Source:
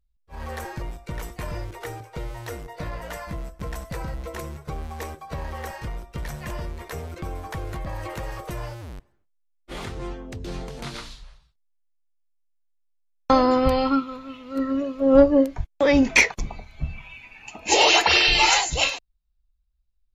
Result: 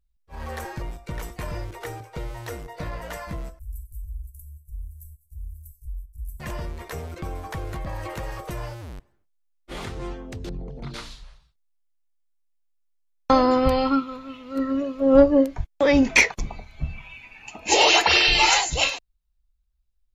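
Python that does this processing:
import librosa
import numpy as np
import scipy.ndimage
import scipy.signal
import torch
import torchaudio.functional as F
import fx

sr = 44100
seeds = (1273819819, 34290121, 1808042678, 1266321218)

y = fx.cheby2_bandstop(x, sr, low_hz=280.0, high_hz=3000.0, order=4, stop_db=70, at=(3.59, 6.4))
y = fx.envelope_sharpen(y, sr, power=2.0, at=(10.49, 10.94))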